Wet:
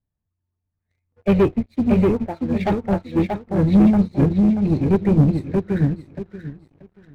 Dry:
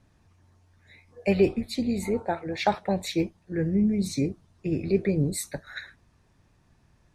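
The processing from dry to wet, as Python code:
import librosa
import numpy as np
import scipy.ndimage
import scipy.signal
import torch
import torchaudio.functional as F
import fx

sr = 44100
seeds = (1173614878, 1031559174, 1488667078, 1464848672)

p1 = fx.spec_quant(x, sr, step_db=15)
p2 = fx.air_absorb(p1, sr, metres=420.0)
p3 = p2 + fx.echo_feedback(p2, sr, ms=633, feedback_pct=41, wet_db=-3, dry=0)
p4 = fx.leveller(p3, sr, passes=3)
p5 = fx.low_shelf(p4, sr, hz=250.0, db=7.5)
y = fx.upward_expand(p5, sr, threshold_db=-22.0, expansion=2.5)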